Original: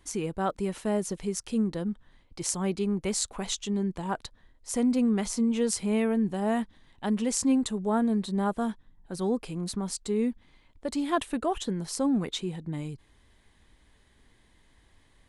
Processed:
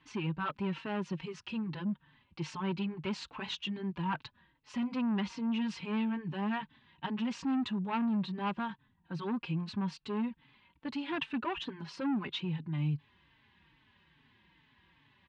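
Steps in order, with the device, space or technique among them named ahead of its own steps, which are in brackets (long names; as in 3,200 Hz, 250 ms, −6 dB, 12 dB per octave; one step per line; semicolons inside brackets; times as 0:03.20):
barber-pole flanger into a guitar amplifier (barber-pole flanger 4 ms −2.4 Hz; soft clipping −28 dBFS, distortion −11 dB; loudspeaker in its box 100–4,100 Hz, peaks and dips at 150 Hz +9 dB, 460 Hz −8 dB, 670 Hz −9 dB, 960 Hz +7 dB, 1,600 Hz +4 dB, 2,700 Hz +10 dB)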